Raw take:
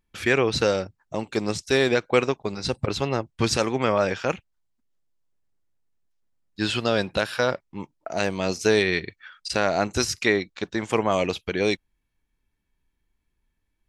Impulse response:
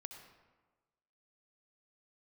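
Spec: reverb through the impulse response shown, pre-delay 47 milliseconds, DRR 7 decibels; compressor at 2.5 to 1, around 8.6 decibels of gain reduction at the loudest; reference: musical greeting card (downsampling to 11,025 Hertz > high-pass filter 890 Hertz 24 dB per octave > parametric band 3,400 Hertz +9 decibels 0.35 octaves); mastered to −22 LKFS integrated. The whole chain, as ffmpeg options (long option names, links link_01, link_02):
-filter_complex "[0:a]acompressor=threshold=-28dB:ratio=2.5,asplit=2[link_01][link_02];[1:a]atrim=start_sample=2205,adelay=47[link_03];[link_02][link_03]afir=irnorm=-1:irlink=0,volume=-2.5dB[link_04];[link_01][link_04]amix=inputs=2:normalize=0,aresample=11025,aresample=44100,highpass=frequency=890:width=0.5412,highpass=frequency=890:width=1.3066,equalizer=frequency=3400:width_type=o:width=0.35:gain=9,volume=10.5dB"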